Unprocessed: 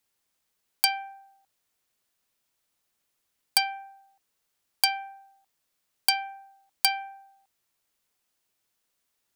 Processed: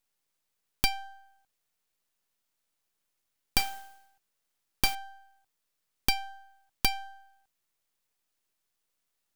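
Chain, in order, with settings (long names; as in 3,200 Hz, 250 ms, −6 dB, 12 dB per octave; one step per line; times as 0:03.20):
stylus tracing distortion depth 0.16 ms
half-wave rectification
0:03.57–0:04.95: noise that follows the level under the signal 11 dB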